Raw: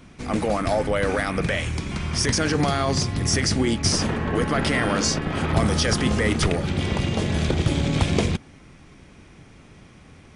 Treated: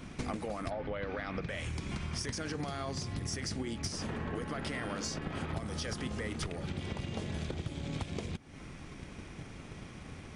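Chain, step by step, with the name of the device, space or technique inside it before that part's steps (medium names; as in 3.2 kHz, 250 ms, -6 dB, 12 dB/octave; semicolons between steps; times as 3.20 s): drum-bus smash (transient shaper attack +6 dB, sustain +2 dB; compression 16:1, threshold -33 dBFS, peak gain reduction 23.5 dB; saturation -22.5 dBFS, distortion -27 dB); 0.69–1.48 s: low-pass 3.3 kHz -> 5.5 kHz 24 dB/octave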